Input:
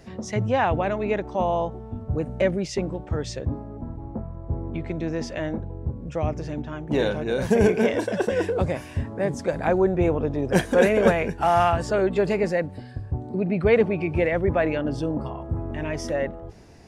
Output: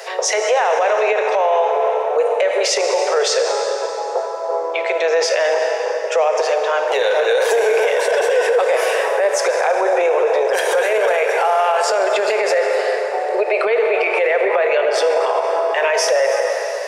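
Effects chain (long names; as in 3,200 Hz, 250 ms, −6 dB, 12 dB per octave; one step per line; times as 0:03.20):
Butterworth high-pass 440 Hz 72 dB per octave
downward compressor, threshold −28 dBFS, peak gain reduction 14 dB
on a send at −5 dB: convolution reverb RT60 3.6 s, pre-delay 18 ms
on the sum: boost into a limiter +29 dB
level −7.5 dB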